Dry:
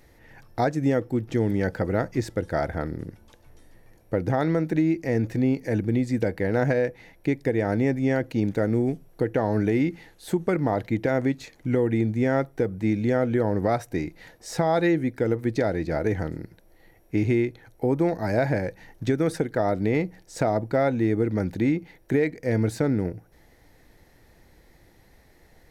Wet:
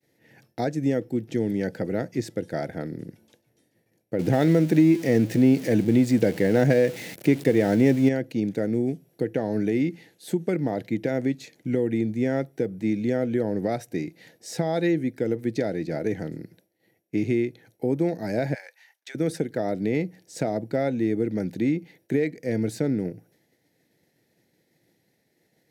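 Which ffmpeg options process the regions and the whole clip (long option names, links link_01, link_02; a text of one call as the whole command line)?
ffmpeg -i in.wav -filter_complex "[0:a]asettb=1/sr,asplit=3[link_01][link_02][link_03];[link_01]atrim=end=4.194[link_04];[link_02]atrim=start=4.19:end=8.09,asetpts=PTS-STARTPTS,afade=type=in:duration=0.004:curve=qsin,afade=type=out:start_time=3.896:duration=0.004:curve=qsin,aeval=exprs='val(0)+0.5*0.015*sgn(val(0))':channel_layout=same,acontrast=31[link_05];[link_03]atrim=start=8.086[link_06];[link_04][link_05]acrossfade=duration=0.004:curve1=hsin:curve2=qsin[link_07];[link_07][link_06]acrossfade=duration=0.004:curve1=qsin:curve2=hsin,asettb=1/sr,asplit=3[link_08][link_09][link_10];[link_08]atrim=end=18.544[link_11];[link_09]atrim=start=18.54:end=19.15,asetpts=PTS-STARTPTS,afade=type=in:duration=0.004:curve=qsin,afade=type=out:start_time=0.606:duration=0.004:curve=qsin,highpass=frequency=920:width=0.5412,highpass=frequency=920:width=1.3066,highshelf=frequency=4500:gain=-3[link_12];[link_10]atrim=start=19.146[link_13];[link_11][link_12]acrossfade=duration=0.004:curve1=hsin:curve2=qsin[link_14];[link_14][link_13]acrossfade=duration=0.004:curve1=qsin:curve2=hsin,highpass=frequency=130:width=0.5412,highpass=frequency=130:width=1.3066,agate=range=-33dB:threshold=-52dB:ratio=3:detection=peak,equalizer=frequency=1100:width_type=o:width=0.95:gain=-13.5" out.wav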